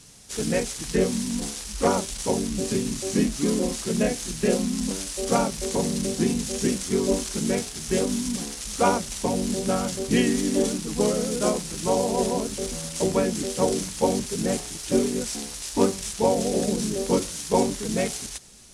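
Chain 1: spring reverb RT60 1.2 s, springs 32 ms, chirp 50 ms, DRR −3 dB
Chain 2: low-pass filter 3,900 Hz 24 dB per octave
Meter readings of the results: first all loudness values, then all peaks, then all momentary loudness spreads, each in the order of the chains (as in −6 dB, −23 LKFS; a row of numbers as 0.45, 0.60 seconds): −20.5, −26.0 LKFS; −4.0, −7.5 dBFS; 5, 8 LU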